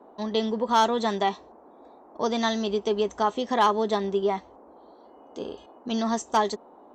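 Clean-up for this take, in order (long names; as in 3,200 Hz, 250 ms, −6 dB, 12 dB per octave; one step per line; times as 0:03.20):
clipped peaks rebuilt −13 dBFS
noise reduction from a noise print 19 dB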